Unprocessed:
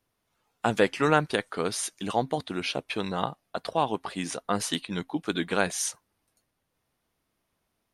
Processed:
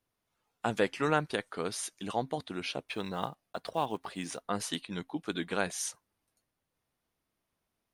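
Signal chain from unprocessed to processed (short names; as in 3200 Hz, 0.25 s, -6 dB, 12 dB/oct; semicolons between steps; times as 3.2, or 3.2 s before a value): 2.88–4.44 block floating point 7-bit; gain -6 dB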